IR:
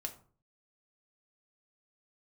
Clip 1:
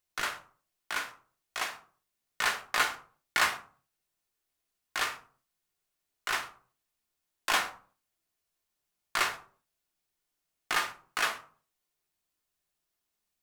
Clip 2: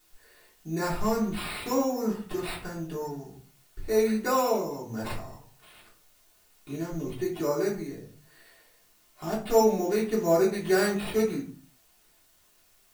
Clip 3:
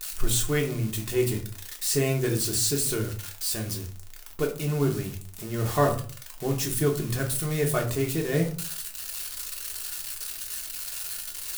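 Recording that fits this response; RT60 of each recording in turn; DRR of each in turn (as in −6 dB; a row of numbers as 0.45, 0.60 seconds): 1; 0.45, 0.45, 0.45 seconds; 4.0, −6.5, 0.0 decibels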